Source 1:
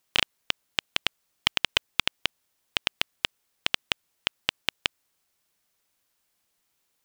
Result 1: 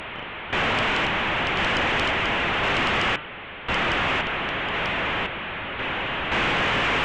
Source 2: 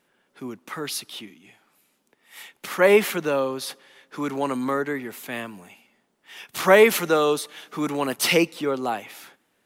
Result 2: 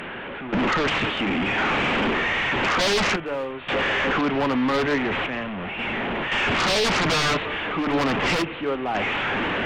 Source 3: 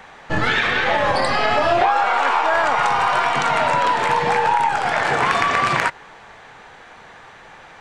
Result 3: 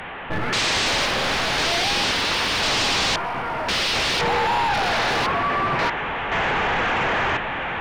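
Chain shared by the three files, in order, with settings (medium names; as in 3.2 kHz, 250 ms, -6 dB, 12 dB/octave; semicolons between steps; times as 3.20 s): one-bit delta coder 16 kbps, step -26.5 dBFS; overload inside the chain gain 18.5 dB; random-step tremolo 1.9 Hz, depth 85%; sine folder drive 9 dB, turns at -18 dBFS; de-hum 149.9 Hz, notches 22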